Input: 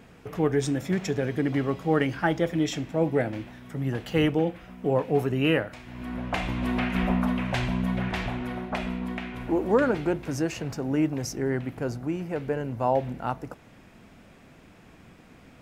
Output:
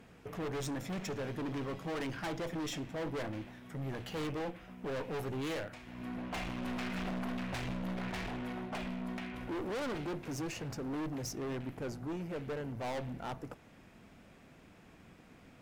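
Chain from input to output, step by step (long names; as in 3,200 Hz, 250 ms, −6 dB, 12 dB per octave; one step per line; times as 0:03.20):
tube saturation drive 25 dB, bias 0.7
gain into a clipping stage and back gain 33.5 dB
mains-hum notches 60/120 Hz
level −2 dB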